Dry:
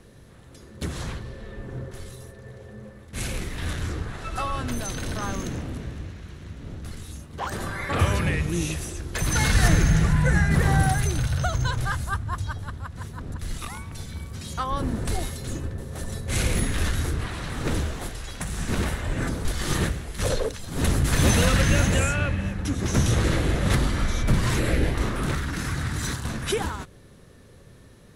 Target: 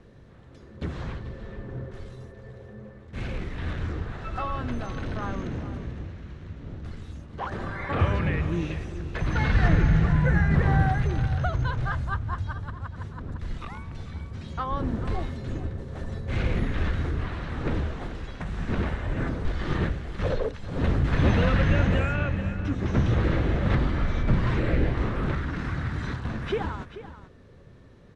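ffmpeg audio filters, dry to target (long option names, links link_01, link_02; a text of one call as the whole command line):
ffmpeg -i in.wav -filter_complex "[0:a]aemphasis=mode=reproduction:type=75fm,acrossover=split=4100[link_01][link_02];[link_02]acompressor=threshold=-57dB:ratio=4:attack=1:release=60[link_03];[link_01][link_03]amix=inputs=2:normalize=0,lowpass=7900,aecho=1:1:436:0.211,volume=-2dB" out.wav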